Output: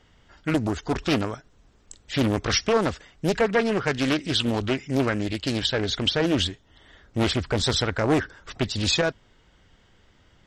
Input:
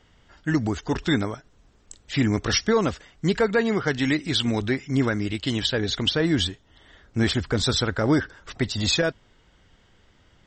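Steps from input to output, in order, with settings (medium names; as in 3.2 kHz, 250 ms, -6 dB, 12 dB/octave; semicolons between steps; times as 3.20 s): loudspeaker Doppler distortion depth 0.72 ms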